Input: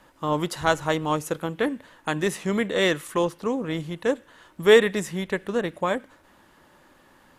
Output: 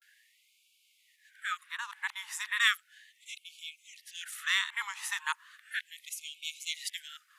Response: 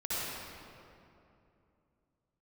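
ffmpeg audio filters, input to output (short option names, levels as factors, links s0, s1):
-af "areverse,afftfilt=real='re*gte(b*sr/1024,780*pow(2200/780,0.5+0.5*sin(2*PI*0.35*pts/sr)))':imag='im*gte(b*sr/1024,780*pow(2200/780,0.5+0.5*sin(2*PI*0.35*pts/sr)))':win_size=1024:overlap=0.75,volume=0.75"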